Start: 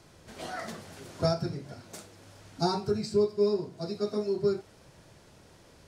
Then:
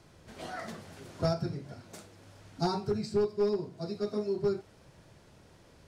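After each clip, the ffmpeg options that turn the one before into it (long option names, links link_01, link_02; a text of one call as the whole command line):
ffmpeg -i in.wav -af "aeval=exprs='clip(val(0),-1,0.0891)':channel_layout=same,bass=frequency=250:gain=2,treble=frequency=4000:gain=-3,volume=-2.5dB" out.wav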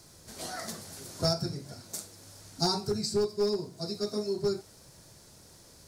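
ffmpeg -i in.wav -af "aexciter=amount=5.9:drive=2.4:freq=4100" out.wav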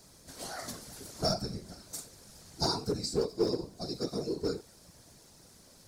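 ffmpeg -i in.wav -af "afftfilt=real='hypot(re,im)*cos(2*PI*random(0))':imag='hypot(re,im)*sin(2*PI*random(1))':win_size=512:overlap=0.75,volume=3.5dB" out.wav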